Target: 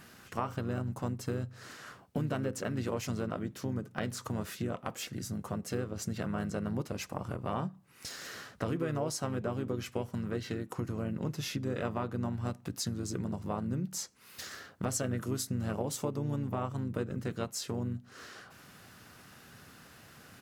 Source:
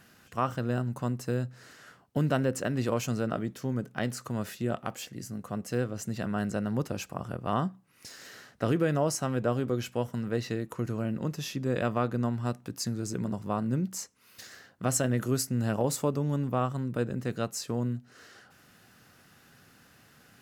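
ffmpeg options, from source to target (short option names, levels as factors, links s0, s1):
-filter_complex "[0:a]acompressor=threshold=0.0112:ratio=2.5,asplit=2[s0][s1];[s1]asetrate=35002,aresample=44100,atempo=1.25992,volume=0.501[s2];[s0][s2]amix=inputs=2:normalize=0,volume=1.41"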